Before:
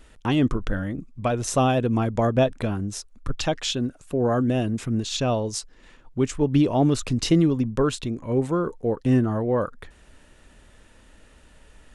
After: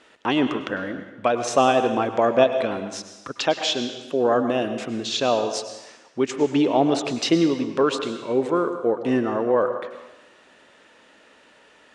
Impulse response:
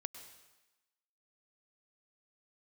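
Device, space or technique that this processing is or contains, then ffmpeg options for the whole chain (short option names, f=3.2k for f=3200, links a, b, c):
supermarket ceiling speaker: -filter_complex "[0:a]highpass=350,lowpass=5.2k[a];[1:a]atrim=start_sample=2205[b];[a][b]afir=irnorm=-1:irlink=0,volume=8dB"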